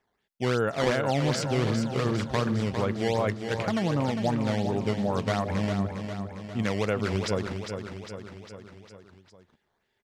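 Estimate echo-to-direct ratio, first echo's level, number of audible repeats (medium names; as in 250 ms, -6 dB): -5.5 dB, -7.5 dB, 5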